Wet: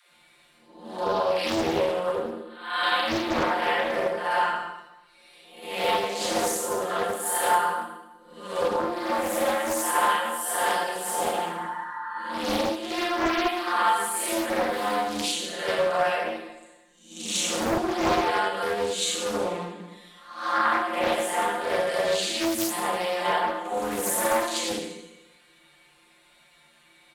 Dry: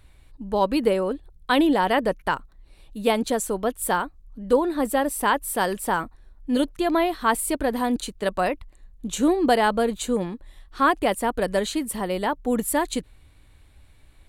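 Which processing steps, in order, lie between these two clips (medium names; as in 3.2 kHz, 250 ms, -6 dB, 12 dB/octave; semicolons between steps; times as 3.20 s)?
reverse spectral sustain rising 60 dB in 0.33 s; frequency weighting A; spectral replace 5.86–6.60 s, 870–2000 Hz before; comb 6.7 ms, depth 57%; compression 4:1, threshold -25 dBFS, peak gain reduction 11.5 dB; phase dispersion lows, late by 68 ms, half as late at 390 Hz; granular stretch 1.9×, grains 24 ms; Schroeder reverb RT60 1 s, combs from 27 ms, DRR -3 dB; loudspeaker Doppler distortion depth 0.87 ms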